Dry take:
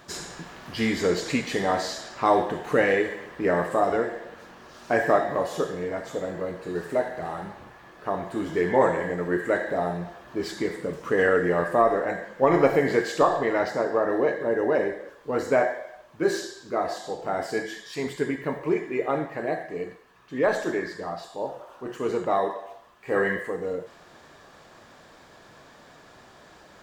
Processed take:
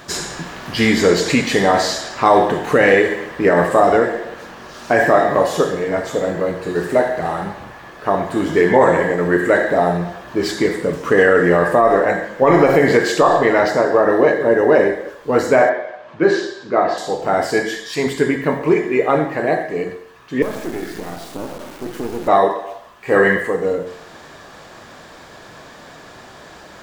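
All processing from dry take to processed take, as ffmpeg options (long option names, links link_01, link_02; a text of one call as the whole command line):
ffmpeg -i in.wav -filter_complex "[0:a]asettb=1/sr,asplit=3[link_01][link_02][link_03];[link_01]atrim=end=15.694[link_04];[link_02]atrim=start=15.69:end=16.98,asetpts=PTS-STARTPTS,afade=type=in:duration=0.004:curve=qsin,afade=type=out:start_time=1.286:duration=0.004:curve=qsin,highpass=110,lowpass=3500,acompressor=mode=upward:threshold=-44dB:ratio=2.5:attack=3.2:release=140:knee=2.83:detection=peak[link_05];[link_03]atrim=start=16.976[link_06];[link_04][link_05]acrossfade=duration=0.004:curve1=hsin:curve2=qsin[link_07];[link_07][link_06]acrossfade=duration=0.004:curve1=qsin:curve2=hsin,asettb=1/sr,asplit=3[link_08][link_09][link_10];[link_08]atrim=end=20.424[link_11];[link_09]atrim=start=20.42:end=22.28,asetpts=PTS-STARTPTS,afade=type=in:duration=0.004:curve=qsin,afade=type=out:start_time=1.856:duration=0.004:curve=qsin,acompressor=threshold=-39dB:ratio=3:attack=3.2:release=140:knee=1:detection=peak,acrusher=bits=5:dc=4:mix=0:aa=0.000001,equalizer=frequency=270:width_type=o:width=1.5:gain=12[link_12];[link_10]atrim=start=22.276[link_13];[link_11][link_12]acrossfade=duration=0.004:curve1=hsin:curve2=qsin[link_14];[link_14][link_13]acrossfade=duration=0.004:curve1=qsin:curve2=hsin,bandreject=frequency=45.05:width_type=h:width=4,bandreject=frequency=90.1:width_type=h:width=4,bandreject=frequency=135.15:width_type=h:width=4,bandreject=frequency=180.2:width_type=h:width=4,bandreject=frequency=225.25:width_type=h:width=4,bandreject=frequency=270.3:width_type=h:width=4,bandreject=frequency=315.35:width_type=h:width=4,bandreject=frequency=360.4:width_type=h:width=4,bandreject=frequency=405.45:width_type=h:width=4,bandreject=frequency=450.5:width_type=h:width=4,bandreject=frequency=495.55:width_type=h:width=4,bandreject=frequency=540.6:width_type=h:width=4,bandreject=frequency=585.65:width_type=h:width=4,bandreject=frequency=630.7:width_type=h:width=4,bandreject=frequency=675.75:width_type=h:width=4,bandreject=frequency=720.8:width_type=h:width=4,bandreject=frequency=765.85:width_type=h:width=4,bandreject=frequency=810.9:width_type=h:width=4,bandreject=frequency=855.95:width_type=h:width=4,bandreject=frequency=901:width_type=h:width=4,bandreject=frequency=946.05:width_type=h:width=4,bandreject=frequency=991.1:width_type=h:width=4,bandreject=frequency=1036.15:width_type=h:width=4,bandreject=frequency=1081.2:width_type=h:width=4,bandreject=frequency=1126.25:width_type=h:width=4,bandreject=frequency=1171.3:width_type=h:width=4,bandreject=frequency=1216.35:width_type=h:width=4,bandreject=frequency=1261.4:width_type=h:width=4,bandreject=frequency=1306.45:width_type=h:width=4,bandreject=frequency=1351.5:width_type=h:width=4,bandreject=frequency=1396.55:width_type=h:width=4,bandreject=frequency=1441.6:width_type=h:width=4,alimiter=level_in=12.5dB:limit=-1dB:release=50:level=0:latency=1,volume=-1dB" out.wav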